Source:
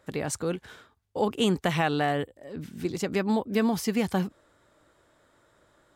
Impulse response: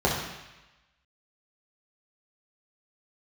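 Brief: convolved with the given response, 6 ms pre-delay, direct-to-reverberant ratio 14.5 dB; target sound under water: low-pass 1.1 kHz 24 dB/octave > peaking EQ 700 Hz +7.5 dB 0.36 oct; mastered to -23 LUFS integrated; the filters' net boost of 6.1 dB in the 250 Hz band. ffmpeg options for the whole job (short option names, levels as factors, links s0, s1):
-filter_complex "[0:a]equalizer=f=250:t=o:g=7.5,asplit=2[s0][s1];[1:a]atrim=start_sample=2205,adelay=6[s2];[s1][s2]afir=irnorm=-1:irlink=0,volume=0.0316[s3];[s0][s3]amix=inputs=2:normalize=0,lowpass=f=1100:w=0.5412,lowpass=f=1100:w=1.3066,equalizer=f=700:t=o:w=0.36:g=7.5"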